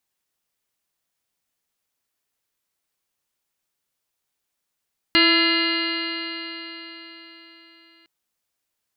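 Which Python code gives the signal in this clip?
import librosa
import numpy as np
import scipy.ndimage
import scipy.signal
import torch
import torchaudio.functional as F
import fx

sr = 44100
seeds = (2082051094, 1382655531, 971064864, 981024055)

y = fx.additive_stiff(sr, length_s=2.91, hz=329.0, level_db=-19.0, upper_db=(-13.0, -11.0, -6.5, -5, 0.0, -10.5, 1, -12.5, -14, 0.0, -9.0), decay_s=4.24, stiffness=0.0026)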